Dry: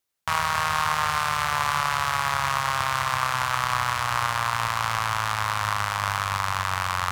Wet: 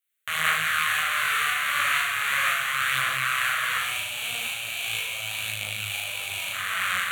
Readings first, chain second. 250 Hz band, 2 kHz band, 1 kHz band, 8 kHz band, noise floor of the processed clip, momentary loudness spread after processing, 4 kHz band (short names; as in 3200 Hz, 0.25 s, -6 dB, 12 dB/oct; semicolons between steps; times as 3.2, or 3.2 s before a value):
n/a, +3.0 dB, -7.0 dB, +1.0 dB, -33 dBFS, 6 LU, +2.5 dB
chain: spectral gain 3.79–6.53, 1000–2200 Hz -18 dB; HPF 180 Hz 6 dB/oct; tilt shelf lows -7.5 dB, about 630 Hz; tremolo saw up 2 Hz, depth 45%; fixed phaser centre 2200 Hz, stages 4; flutter echo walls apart 6.5 m, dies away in 0.84 s; detuned doubles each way 56 cents; gain +2.5 dB